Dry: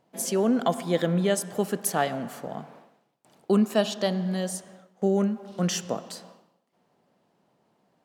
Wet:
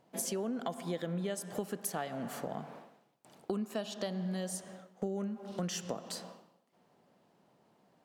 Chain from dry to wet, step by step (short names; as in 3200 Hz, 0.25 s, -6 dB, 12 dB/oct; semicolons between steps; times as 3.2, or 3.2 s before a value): compressor 6:1, threshold -34 dBFS, peak gain reduction 16 dB